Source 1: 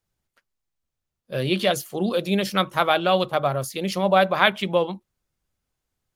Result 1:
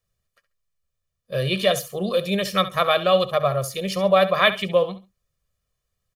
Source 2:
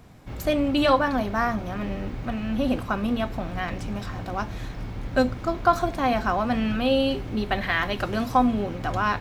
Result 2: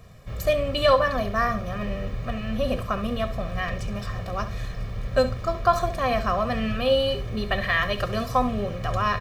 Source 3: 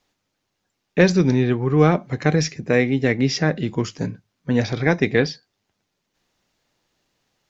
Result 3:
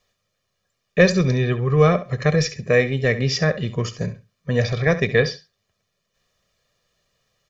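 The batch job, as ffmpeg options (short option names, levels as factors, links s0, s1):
-filter_complex "[0:a]equalizer=f=770:w=3.7:g=-4.5,aecho=1:1:1.7:0.78,asplit=2[s0][s1];[s1]aecho=0:1:68|136:0.2|0.0399[s2];[s0][s2]amix=inputs=2:normalize=0,volume=0.891"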